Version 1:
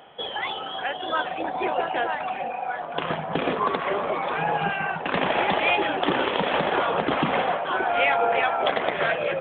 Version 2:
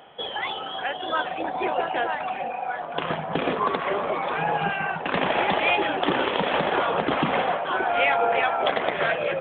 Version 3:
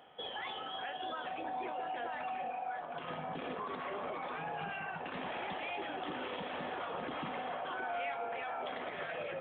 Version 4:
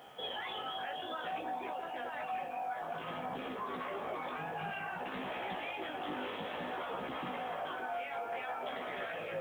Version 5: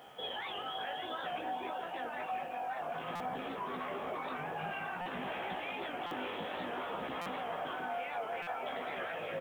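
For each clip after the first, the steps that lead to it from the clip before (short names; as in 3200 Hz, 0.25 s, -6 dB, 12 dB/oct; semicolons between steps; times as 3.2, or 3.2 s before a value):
nothing audible
resonator 250 Hz, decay 0.45 s, harmonics odd, mix 70%; limiter -31.5 dBFS, peak gain reduction 11.5 dB; resonator 100 Hz, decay 1.3 s, harmonics odd, mix 70%; gain +9.5 dB
limiter -37.5 dBFS, peak gain reduction 9 dB; bit-crush 12-bit; chorus 0.57 Hz, delay 15 ms, depth 4.8 ms; gain +8.5 dB
echo 0.567 s -8.5 dB; stuck buffer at 3.15/5.01/6.06/7.21/8.42, samples 256, times 8; record warp 78 rpm, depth 100 cents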